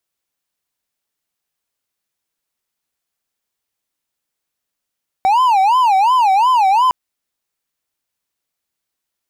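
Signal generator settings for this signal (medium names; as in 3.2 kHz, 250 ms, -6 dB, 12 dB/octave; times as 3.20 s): siren wail 759–1030 Hz 2.8 per s triangle -7.5 dBFS 1.66 s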